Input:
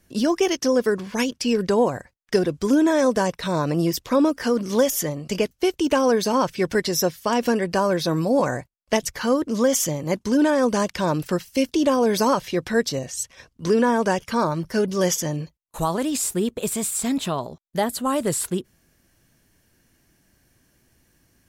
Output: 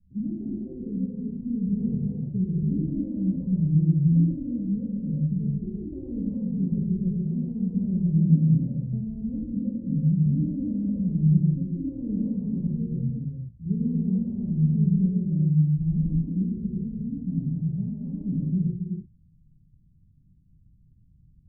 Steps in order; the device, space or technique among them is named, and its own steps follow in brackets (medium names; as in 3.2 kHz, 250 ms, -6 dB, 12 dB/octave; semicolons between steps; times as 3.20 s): the neighbour's flat through the wall (low-pass 170 Hz 24 dB/octave; peaking EQ 180 Hz +3 dB); peaking EQ 220 Hz -3 dB; gated-style reverb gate 460 ms flat, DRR -8 dB